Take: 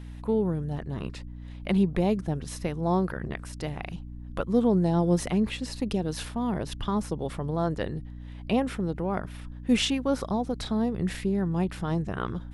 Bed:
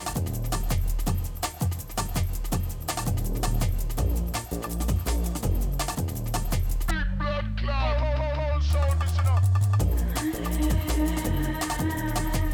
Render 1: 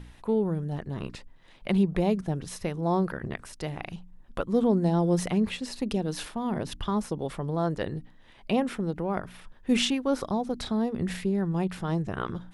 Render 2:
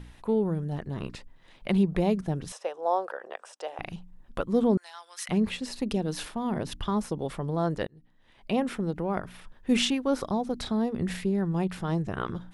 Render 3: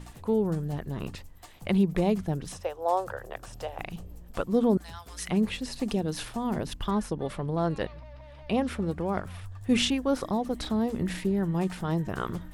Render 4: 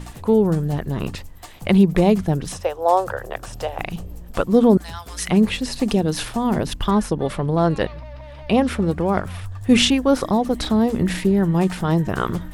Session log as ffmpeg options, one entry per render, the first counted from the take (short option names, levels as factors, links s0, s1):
-af "bandreject=f=60:t=h:w=4,bandreject=f=120:t=h:w=4,bandreject=f=180:t=h:w=4,bandreject=f=240:t=h:w=4,bandreject=f=300:t=h:w=4"
-filter_complex "[0:a]asettb=1/sr,asplit=3[s0][s1][s2];[s0]atrim=end=2.524[s3];[s1]atrim=start=2.52:end=3.79,asetpts=PTS-STARTPTS,afade=t=in:d=0.004:c=qsin,afade=t=out:st=1.266:d=0.004:c=qsin,highpass=f=490:w=0.5412,highpass=f=490:w=1.3066,equalizer=f=530:t=q:w=4:g=6,equalizer=f=780:t=q:w=4:g=5,equalizer=f=2100:t=q:w=4:g=-9,equalizer=f=4300:t=q:w=4:g=-9,equalizer=f=6600:t=q:w=4:g=-3,lowpass=f=8300:w=0.5412,lowpass=f=8300:w=1.3066[s4];[s2]atrim=start=3.786[s5];[s3][s4]acrossfade=d=0.004:c1=hsin:c2=qsin[s6];[s6][s5]acrossfade=d=0.004:c1=qsin:c2=hsin,asettb=1/sr,asplit=3[s7][s8][s9];[s7]atrim=end=4.774[s10];[s8]atrim=start=4.77:end=5.29,asetpts=PTS-STARTPTS,afade=t=in:d=0.004:c=qsin,afade=t=out:st=0.516:d=0.004:c=qsin,highpass=f=1300:w=0.5412,highpass=f=1300:w=1.3066[s11];[s9]atrim=start=5.286[s12];[s10][s11]acrossfade=d=0.004:c1=hsin:c2=qsin[s13];[s13][s12]acrossfade=d=0.004:c1=qsin:c2=hsin,asplit=2[s14][s15];[s14]atrim=end=7.87,asetpts=PTS-STARTPTS,afade=t=out:st=7.866:d=0.004:c=hsin[s16];[s15]atrim=start=7.87,asetpts=PTS-STARTPTS,afade=t=in:d=0.81[s17];[s16][s17]concat=n=2:v=0:a=1"
-filter_complex "[1:a]volume=0.0891[s0];[0:a][s0]amix=inputs=2:normalize=0"
-af "volume=2.99"